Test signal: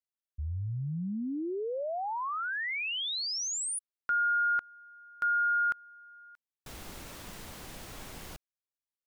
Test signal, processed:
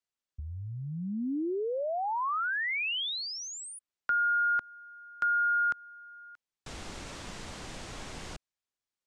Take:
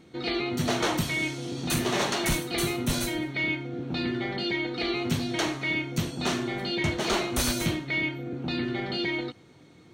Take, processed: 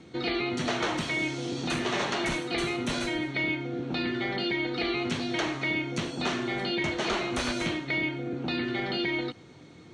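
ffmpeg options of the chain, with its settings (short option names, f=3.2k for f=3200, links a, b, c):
-filter_complex "[0:a]lowpass=f=8.3k:w=0.5412,lowpass=f=8.3k:w=1.3066,acrossover=split=240|1200|3400[a][b][c][d];[a]acompressor=threshold=-43dB:ratio=4[e];[b]acompressor=threshold=-34dB:ratio=4[f];[c]acompressor=threshold=-35dB:ratio=4[g];[d]acompressor=threshold=-47dB:ratio=4[h];[e][f][g][h]amix=inputs=4:normalize=0,volume=3.5dB"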